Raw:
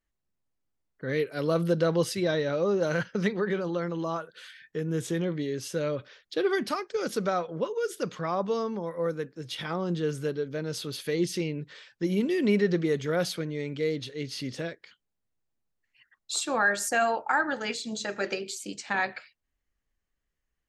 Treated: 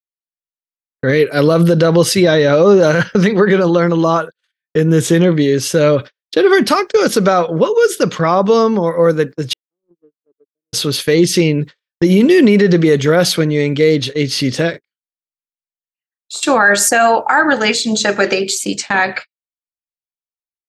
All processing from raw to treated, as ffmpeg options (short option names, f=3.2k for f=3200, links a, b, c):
-filter_complex "[0:a]asettb=1/sr,asplit=3[a][b][c];[a]atrim=end=9.534[d];[b]atrim=start=9.53:end=10.73,asetpts=PTS-STARTPTS,afade=t=in:d=0.004:c=qsin,afade=t=out:st=1.196:d=0.004:c=qsin,agate=range=-43dB:threshold=-31dB:ratio=16:release=100:detection=peak,acompressor=threshold=-41dB:ratio=3:attack=3.2:release=140:knee=1:detection=peak,bandpass=f=350:t=q:w=3.2[e];[c]atrim=start=10.726[f];[d][e]acrossfade=d=0.004:c1=hsin:c2=qsin[g];[g][f]acrossfade=d=0.004:c1=qsin:c2=hsin,asettb=1/sr,asplit=3[h][i][j];[h]atrim=end=14.704[k];[i]atrim=start=14.7:end=16.43,asetpts=PTS-STARTPTS,afade=t=in:d=0.004:c=qsin,afade=t=out:st=1.726:d=0.004:c=qsin,bandreject=f=50:t=h:w=6,bandreject=f=100:t=h:w=6,bandreject=f=150:t=h:w=6,bandreject=f=200:t=h:w=6,bandreject=f=250:t=h:w=6,bandreject=f=300:t=h:w=6,bandreject=f=350:t=h:w=6,bandreject=f=400:t=h:w=6,bandreject=f=450:t=h:w=6,acompressor=threshold=-38dB:ratio=16:attack=3.2:release=140:knee=1:detection=peak,asplit=2[l][m];[m]adelay=37,volume=-8dB[n];[l][n]amix=inputs=2:normalize=0,atrim=end_sample=76293[o];[j]atrim=start=16.426[p];[k][o]acrossfade=d=0.004:c1=hsin:c2=qsin[q];[q][p]acrossfade=d=0.004:c1=qsin:c2=hsin,agate=range=-53dB:threshold=-41dB:ratio=16:detection=peak,alimiter=level_in=19.5dB:limit=-1dB:release=50:level=0:latency=1,volume=-1dB"